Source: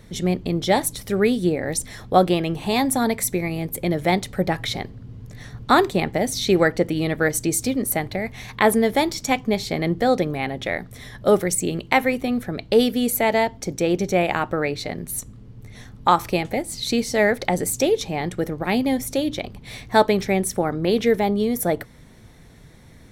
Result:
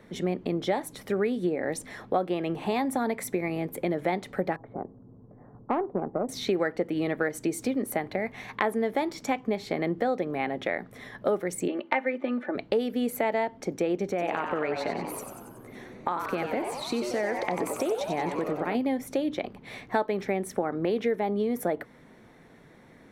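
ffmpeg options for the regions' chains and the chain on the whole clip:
ffmpeg -i in.wav -filter_complex "[0:a]asettb=1/sr,asplit=3[link_01][link_02][link_03];[link_01]atrim=end=4.564[link_04];[link_02]atrim=start=4.56:end=6.29,asetpts=PTS-STARTPTS,afade=type=in:duration=0.004:curve=qsin,afade=type=out:start_time=1.726:duration=0.004:curve=qsin,lowpass=frequency=1000:width=0.5412,lowpass=frequency=1000:width=1.3066,aeval=exprs='(tanh(4.47*val(0)+0.65)-tanh(0.65))/4.47':channel_layout=same[link_05];[link_03]atrim=start=6.286[link_06];[link_04][link_05]acrossfade=duration=0.004:curve1=hsin:curve2=qsin[link_07];[link_07][link_06]acrossfade=duration=0.004:curve1=qsin:curve2=hsin,asettb=1/sr,asplit=3[link_08][link_09][link_10];[link_08]atrim=end=11.684[link_11];[link_09]atrim=start=11.68:end=12.55,asetpts=PTS-STARTPTS,afade=type=in:duration=0.004:curve=qsin,afade=type=out:start_time=0.866:duration=0.004:curve=qsin,highpass=330,lowpass=2800,aecho=1:1:3.4:0.77,atrim=end_sample=38367[link_12];[link_10]atrim=start=12.546[link_13];[link_11][link_12]acrossfade=duration=0.004:curve1=hsin:curve2=qsin[link_14];[link_14][link_13]acrossfade=duration=0.004:curve1=qsin:curve2=hsin,asettb=1/sr,asplit=3[link_15][link_16][link_17];[link_15]atrim=end=14.094[link_18];[link_16]atrim=start=14.09:end=18.75,asetpts=PTS-STARTPTS,afade=type=in:duration=0.004:curve=qsin,afade=type=out:start_time=4.656:duration=0.004:curve=qsin,acompressor=threshold=-21dB:ratio=6:attack=3.2:release=140:knee=1:detection=peak,asplit=9[link_19][link_20][link_21][link_22][link_23][link_24][link_25][link_26][link_27];[link_20]adelay=93,afreqshift=130,volume=-7dB[link_28];[link_21]adelay=186,afreqshift=260,volume=-11.3dB[link_29];[link_22]adelay=279,afreqshift=390,volume=-15.6dB[link_30];[link_23]adelay=372,afreqshift=520,volume=-19.9dB[link_31];[link_24]adelay=465,afreqshift=650,volume=-24.2dB[link_32];[link_25]adelay=558,afreqshift=780,volume=-28.5dB[link_33];[link_26]adelay=651,afreqshift=910,volume=-32.8dB[link_34];[link_27]adelay=744,afreqshift=1040,volume=-37.1dB[link_35];[link_19][link_28][link_29][link_30][link_31][link_32][link_33][link_34][link_35]amix=inputs=9:normalize=0,atrim=end_sample=205506[link_36];[link_17]atrim=start=18.746[link_37];[link_18][link_36]acrossfade=duration=0.004:curve1=hsin:curve2=qsin[link_38];[link_38][link_37]acrossfade=duration=0.004:curve1=qsin:curve2=hsin,acrossover=split=190 2500:gain=0.126 1 0.224[link_39][link_40][link_41];[link_39][link_40][link_41]amix=inputs=3:normalize=0,acompressor=threshold=-24dB:ratio=4" out.wav

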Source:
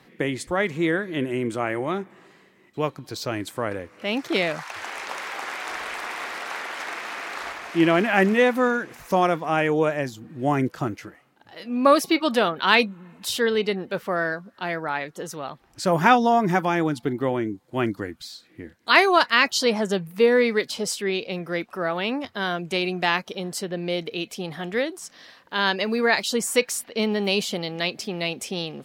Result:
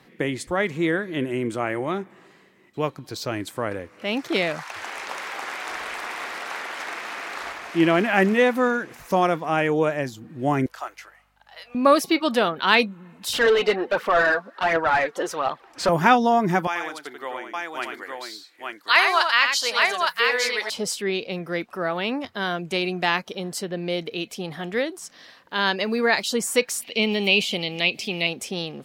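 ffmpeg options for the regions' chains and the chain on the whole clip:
ffmpeg -i in.wav -filter_complex "[0:a]asettb=1/sr,asplit=3[link_01][link_02][link_03];[link_01]atrim=end=10.664[link_04];[link_02]atrim=start=10.66:end=11.75,asetpts=PTS-STARTPTS,afade=type=in:duration=0.004:curve=qsin,afade=type=out:start_time=1.086:duration=0.004:curve=qsin,highpass=frequency=660:width=0.5412,highpass=frequency=660:width=1.3066,aeval=exprs='val(0)+0.000398*(sin(2*PI*50*n/s)+sin(2*PI*2*50*n/s)/2+sin(2*PI*3*50*n/s)/3+sin(2*PI*4*50*n/s)/4+sin(2*PI*5*50*n/s)/5)':channel_layout=same[link_05];[link_03]atrim=start=11.746[link_06];[link_04][link_05]acrossfade=duration=0.004:curve1=hsin:curve2=qsin[link_07];[link_07][link_06]acrossfade=duration=0.004:curve1=qsin:curve2=hsin,asettb=1/sr,asplit=3[link_08][link_09][link_10];[link_08]atrim=end=13.334[link_11];[link_09]atrim=start=13.33:end=15.89,asetpts=PTS-STARTPTS,afade=type=in:duration=0.004:curve=qsin,afade=type=out:start_time=2.556:duration=0.004:curve=qsin,bass=frequency=250:gain=-10,treble=frequency=4000:gain=1,aphaser=in_gain=1:out_gain=1:delay=4.6:decay=0.49:speed=1.4:type=triangular,asplit=2[link_12][link_13];[link_13]highpass=frequency=720:poles=1,volume=20dB,asoftclip=type=tanh:threshold=-8dB[link_14];[link_12][link_14]amix=inputs=2:normalize=0,lowpass=frequency=1400:poles=1,volume=-6dB[link_15];[link_10]atrim=start=15.886[link_16];[link_11][link_15]acrossfade=duration=0.004:curve1=hsin:curve2=qsin[link_17];[link_17][link_16]acrossfade=duration=0.004:curve1=qsin:curve2=hsin,asettb=1/sr,asplit=3[link_18][link_19][link_20];[link_18]atrim=end=16.674[link_21];[link_19]atrim=start=16.67:end=20.7,asetpts=PTS-STARTPTS,afade=type=in:duration=0.004:curve=qsin,afade=type=out:start_time=4.026:duration=0.004:curve=qsin,highpass=860,aecho=1:1:87|864:0.531|0.708,atrim=end_sample=177723[link_22];[link_20]atrim=start=20.696[link_23];[link_21][link_22]acrossfade=duration=0.004:curve1=hsin:curve2=qsin[link_24];[link_24][link_23]acrossfade=duration=0.004:curve1=qsin:curve2=hsin,asettb=1/sr,asplit=3[link_25][link_26][link_27];[link_25]atrim=end=26.824[link_28];[link_26]atrim=start=26.82:end=28.27,asetpts=PTS-STARTPTS,afade=type=in:duration=0.004:curve=qsin,afade=type=out:start_time=1.446:duration=0.004:curve=qsin,acrossover=split=2600[link_29][link_30];[link_30]acompressor=threshold=-39dB:ratio=4:attack=1:release=60[link_31];[link_29][link_31]amix=inputs=2:normalize=0,highshelf=frequency=2000:width_type=q:width=3:gain=7.5[link_32];[link_27]atrim=start=28.266[link_33];[link_28][link_32]acrossfade=duration=0.004:curve1=hsin:curve2=qsin[link_34];[link_34][link_33]acrossfade=duration=0.004:curve1=qsin:curve2=hsin" out.wav

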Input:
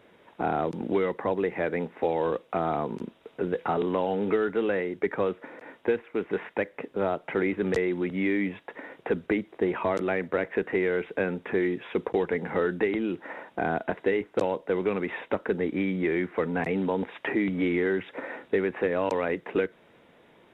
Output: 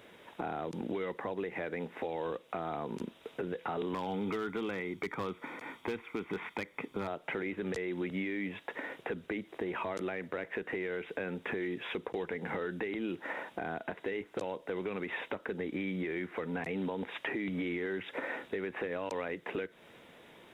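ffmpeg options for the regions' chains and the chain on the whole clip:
ffmpeg -i in.wav -filter_complex "[0:a]asettb=1/sr,asplit=3[link_01][link_02][link_03];[link_01]atrim=end=3.934[link_04];[link_02]atrim=start=3.93:end=7.08,asetpts=PTS-STARTPTS,afade=type=in:duration=0.004:curve=qsin,afade=type=out:start_time=3.146:duration=0.004:curve=qsin,aecho=1:1:0.9:0.55,atrim=end_sample=138915,volume=20dB,asoftclip=hard,volume=-20dB[link_05];[link_03]atrim=start=7.076[link_06];[link_04][link_05]acrossfade=duration=0.004:curve1=hsin:curve2=qsin[link_07];[link_07][link_06]acrossfade=duration=0.004:curve1=qsin:curve2=hsin,highshelf=frequency=2800:gain=9.5,alimiter=limit=-23dB:level=0:latency=1:release=232,acompressor=threshold=-35dB:ratio=2" out.wav

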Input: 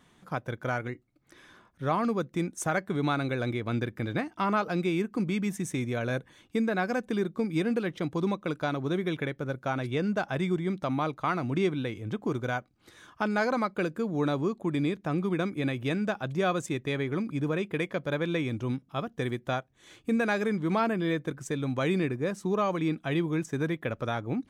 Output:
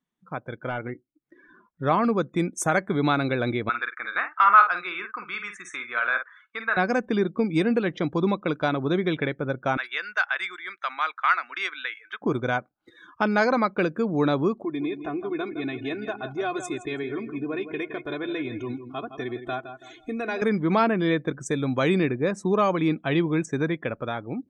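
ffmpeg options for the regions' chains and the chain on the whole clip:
ffmpeg -i in.wav -filter_complex "[0:a]asettb=1/sr,asplit=3[link_01][link_02][link_03];[link_01]atrim=end=0.694[link_04];[link_02]atrim=start=0.69:end=1.83,asetpts=PTS-STARTPTS,afade=type=in:duration=0.004:curve=qsin,afade=type=out:start_time=1.136:duration=0.004:curve=qsin,aemphasis=mode=reproduction:type=75fm,volume=26dB,asoftclip=hard,volume=-26dB[link_05];[link_03]atrim=start=1.826[link_06];[link_04][link_05]acrossfade=duration=0.004:curve1=hsin:curve2=qsin[link_07];[link_07][link_06]acrossfade=duration=0.004:curve1=qsin:curve2=hsin,asettb=1/sr,asplit=3[link_08][link_09][link_10];[link_08]atrim=end=3.694[link_11];[link_09]atrim=start=3.69:end=6.77,asetpts=PTS-STARTPTS,afade=type=in:duration=0.004:curve=qsin,afade=type=out:start_time=3.076:duration=0.004:curve=qsin,highpass=frequency=1300:width_type=q:width=3.7,aemphasis=mode=reproduction:type=bsi,asplit=2[link_12][link_13];[link_13]adelay=50,volume=-7.5dB[link_14];[link_12][link_14]amix=inputs=2:normalize=0,atrim=end_sample=135828[link_15];[link_10]atrim=start=6.766[link_16];[link_11][link_15]acrossfade=duration=0.004:curve1=hsin:curve2=qsin[link_17];[link_17][link_16]acrossfade=duration=0.004:curve1=qsin:curve2=hsin,asettb=1/sr,asplit=3[link_18][link_19][link_20];[link_18]atrim=end=9.774[link_21];[link_19]atrim=start=9.77:end=12.22,asetpts=PTS-STARTPTS,afade=type=in:duration=0.004:curve=qsin,afade=type=out:start_time=2.446:duration=0.004:curve=qsin,highpass=frequency=1500:width_type=q:width=2.2,acrusher=bits=8:mode=log:mix=0:aa=0.000001[link_22];[link_20]atrim=start=12.216[link_23];[link_21][link_22]acrossfade=duration=0.004:curve1=hsin:curve2=qsin[link_24];[link_24][link_23]acrossfade=duration=0.004:curve1=qsin:curve2=hsin,asettb=1/sr,asplit=3[link_25][link_26][link_27];[link_25]atrim=end=14.624[link_28];[link_26]atrim=start=14.62:end=20.42,asetpts=PTS-STARTPTS,afade=type=in:duration=0.004:curve=qsin,afade=type=out:start_time=5.796:duration=0.004:curve=qsin,aecho=1:1:2.8:0.92,atrim=end_sample=255780,acompressor=threshold=-48dB:ratio=1.5:attack=3.2:release=140:knee=1:detection=peak,aecho=1:1:164|328|492|656:0.316|0.123|0.0481|0.0188,atrim=end_sample=255780[link_29];[link_27]atrim=start=20.416[link_30];[link_28][link_29]acrossfade=duration=0.004:curve1=hsin:curve2=qsin[link_31];[link_31][link_30]acrossfade=duration=0.004:curve1=qsin:curve2=hsin,equalizer=frequency=86:width_type=o:width=1.3:gain=-6.5,dynaudnorm=framelen=170:gausssize=11:maxgain=6dB,afftdn=noise_reduction=26:noise_floor=-45" out.wav

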